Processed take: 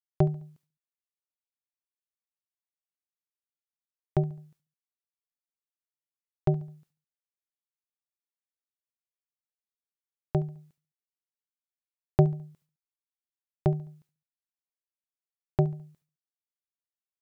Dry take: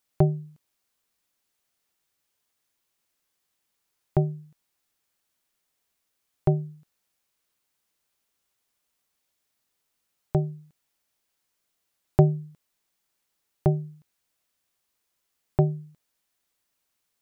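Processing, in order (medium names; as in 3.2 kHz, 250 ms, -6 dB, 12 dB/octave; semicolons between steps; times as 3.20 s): expander -52 dBFS; on a send: feedback delay 70 ms, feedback 42%, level -20 dB; on the sum: trim -3 dB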